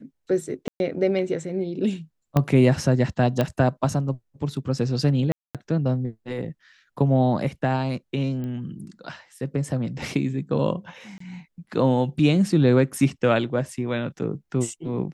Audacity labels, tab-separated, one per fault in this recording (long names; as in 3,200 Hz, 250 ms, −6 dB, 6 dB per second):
0.680000	0.800000	drop-out 121 ms
2.370000	2.370000	click −9 dBFS
3.410000	3.410000	click −10 dBFS
5.320000	5.550000	drop-out 227 ms
8.440000	8.440000	click −23 dBFS
11.180000	11.200000	drop-out 24 ms